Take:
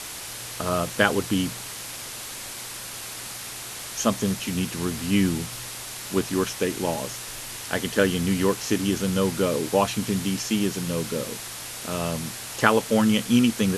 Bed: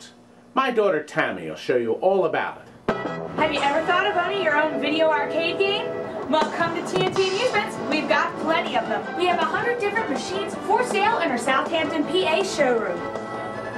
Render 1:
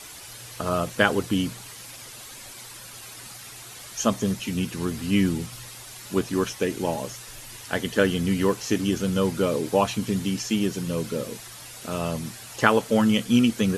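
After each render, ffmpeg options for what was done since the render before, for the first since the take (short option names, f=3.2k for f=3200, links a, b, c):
-af "afftdn=nr=9:nf=-37"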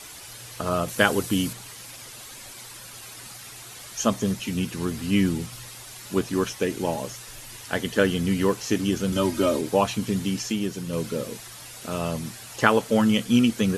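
-filter_complex "[0:a]asettb=1/sr,asplit=3[a][b][c];[a]atrim=end=0.884[d];[b]atrim=start=0.88:end=1.53,asetpts=PTS-STARTPTS,afade=t=in:d=0.004:c=qsin,afade=t=out:st=0.646:d=0.004:c=qsin,highshelf=f=7.1k:g=10.5[e];[c]atrim=start=1.526[f];[d][e]acrossfade=d=0.004:c1=hsin:c2=qsin[g];[g][f]acrossfade=d=0.004:c1=qsin:c2=hsin,asettb=1/sr,asplit=3[h][i][j];[h]atrim=end=9.124[k];[i]atrim=start=9.12:end=9.61,asetpts=PTS-STARTPTS,afade=t=in:d=0.004:c=qsin,afade=t=out:st=0.486:d=0.004:c=qsin,aecho=1:1:3.2:0.92,atrim=end_sample=21609[l];[j]atrim=start=9.606[m];[k][l]acrossfade=d=0.004:c1=hsin:c2=qsin[n];[n][m]acrossfade=d=0.004:c1=qsin:c2=hsin,asplit=3[o][p][q];[o]atrim=end=10.522[r];[p]atrim=start=10.518:end=10.932,asetpts=PTS-STARTPTS,volume=-3dB[s];[q]atrim=start=10.928[t];[r][s]acrossfade=d=0.004:c1=hsin:c2=hsin[u];[u][t]acrossfade=d=0.004:c1=hsin:c2=hsin"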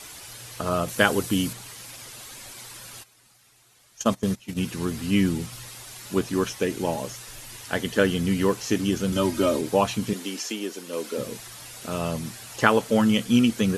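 -filter_complex "[0:a]asplit=3[a][b][c];[a]afade=t=out:st=3.02:d=0.02[d];[b]agate=range=-17dB:threshold=-28dB:ratio=16:release=100:detection=peak,afade=t=in:st=3.02:d=0.02,afade=t=out:st=4.61:d=0.02[e];[c]afade=t=in:st=4.61:d=0.02[f];[d][e][f]amix=inputs=3:normalize=0,asettb=1/sr,asplit=3[g][h][i];[g]atrim=end=10.134[j];[h]atrim=start=10.13:end=11.18,asetpts=PTS-STARTPTS,afade=t=in:d=0.004:c=qsin,afade=t=out:st=1.046:d=0.004:c=qsin,highpass=f=280:w=0.5412,highpass=f=280:w=1.3066[k];[i]atrim=start=11.176[l];[j][k]acrossfade=d=0.004:c1=hsin:c2=qsin[m];[m][l]acrossfade=d=0.004:c1=qsin:c2=hsin"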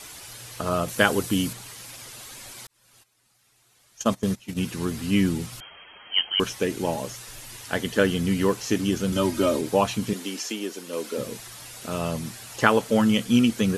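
-filter_complex "[0:a]asettb=1/sr,asplit=3[a][b][c];[a]atrim=end=5.604[d];[b]atrim=start=5.6:end=6.4,asetpts=PTS-STARTPTS,afade=t=in:d=0.004:c=qsin,afade=t=out:st=0.796:d=0.004:c=qsin,lowpass=f=2.8k:t=q:w=0.5098,lowpass=f=2.8k:t=q:w=0.6013,lowpass=f=2.8k:t=q:w=0.9,lowpass=f=2.8k:t=q:w=2.563,afreqshift=-3300[e];[c]atrim=start=6.396[f];[d][e]acrossfade=d=0.004:c1=hsin:c2=qsin[g];[g][f]acrossfade=d=0.004:c1=qsin:c2=hsin,asplit=2[h][i];[h]atrim=end=2.67,asetpts=PTS-STARTPTS,afade=t=out:st=2.666:d=0.004:c=hsin[j];[i]atrim=start=2.67,asetpts=PTS-STARTPTS,afade=t=in:d=1.49[k];[j][k]concat=n=2:v=0:a=1"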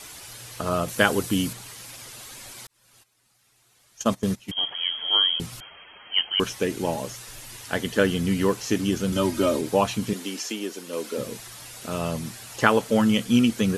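-filter_complex "[0:a]asettb=1/sr,asplit=3[a][b][c];[a]atrim=end=4.514[d];[b]atrim=start=4.51:end=5.4,asetpts=PTS-STARTPTS,afade=t=in:d=0.004:c=qsin,afade=t=out:st=0.886:d=0.004:c=qsin,lowpass=f=2.9k:t=q:w=0.5098,lowpass=f=2.9k:t=q:w=0.6013,lowpass=f=2.9k:t=q:w=0.9,lowpass=f=2.9k:t=q:w=2.563,afreqshift=-3400[e];[c]atrim=start=5.396[f];[d][e]acrossfade=d=0.004:c1=hsin:c2=qsin[g];[g][f]acrossfade=d=0.004:c1=qsin:c2=hsin"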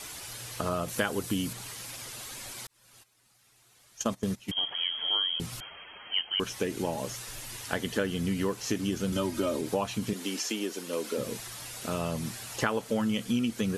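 -af "acompressor=threshold=-28dB:ratio=3"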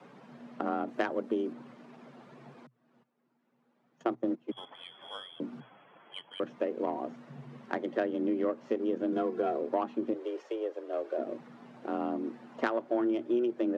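-af "adynamicsmooth=sensitivity=0.5:basefreq=880,afreqshift=120"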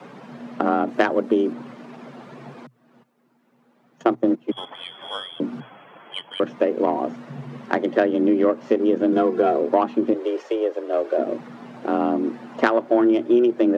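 -af "volume=12dB"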